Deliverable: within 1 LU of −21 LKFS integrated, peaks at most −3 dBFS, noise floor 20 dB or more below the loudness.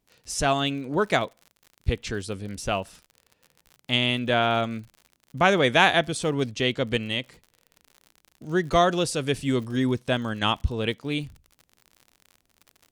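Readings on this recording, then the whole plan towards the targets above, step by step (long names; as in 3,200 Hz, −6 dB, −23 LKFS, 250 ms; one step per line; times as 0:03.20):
crackle rate 60 per second; integrated loudness −25.0 LKFS; sample peak −4.5 dBFS; target loudness −21.0 LKFS
→ click removal
level +4 dB
brickwall limiter −3 dBFS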